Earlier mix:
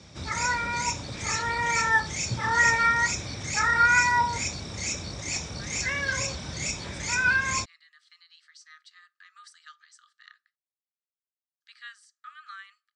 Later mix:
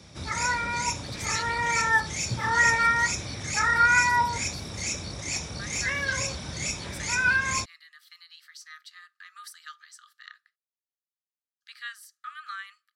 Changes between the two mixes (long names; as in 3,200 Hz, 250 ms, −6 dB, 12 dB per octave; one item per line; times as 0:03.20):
speech +5.5 dB
master: remove Butterworth low-pass 8,700 Hz 48 dB per octave